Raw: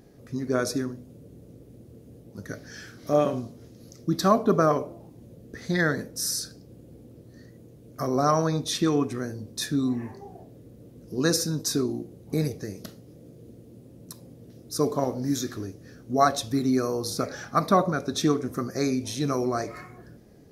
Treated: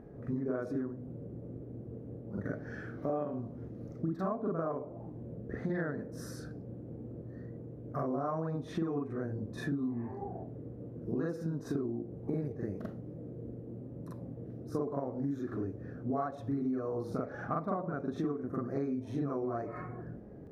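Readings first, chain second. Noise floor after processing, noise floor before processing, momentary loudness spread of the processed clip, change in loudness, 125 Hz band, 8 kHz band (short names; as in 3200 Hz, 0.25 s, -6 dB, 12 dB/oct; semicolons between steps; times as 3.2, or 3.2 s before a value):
-47 dBFS, -50 dBFS, 11 LU, -11.5 dB, -6.5 dB, under -25 dB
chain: EQ curve 690 Hz 0 dB, 1500 Hz -4 dB, 4700 Hz -28 dB; on a send: reverse echo 43 ms -5 dB; on the sum: compressor 8:1, threshold -34 dBFS, peak gain reduction 19.5 dB; gain +2.5 dB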